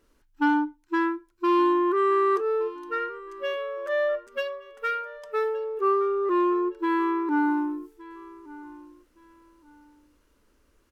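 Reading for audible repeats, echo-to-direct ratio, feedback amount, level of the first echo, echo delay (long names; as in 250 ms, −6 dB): 2, −19.0 dB, 25%, −19.5 dB, 1,168 ms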